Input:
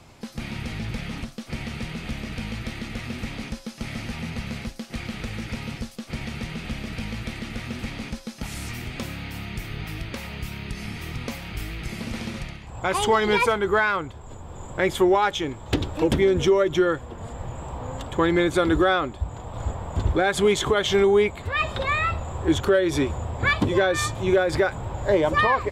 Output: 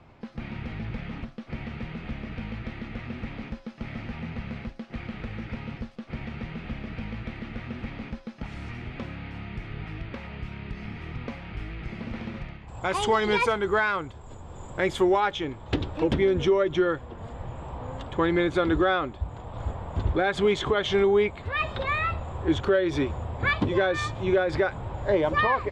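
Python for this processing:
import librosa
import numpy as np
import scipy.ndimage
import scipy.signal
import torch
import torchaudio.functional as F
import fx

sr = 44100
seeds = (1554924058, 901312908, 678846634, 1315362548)

y = fx.lowpass(x, sr, hz=fx.steps((0.0, 2300.0), (12.68, 7500.0), (15.2, 4100.0)), slope=12)
y = F.gain(torch.from_numpy(y), -3.0).numpy()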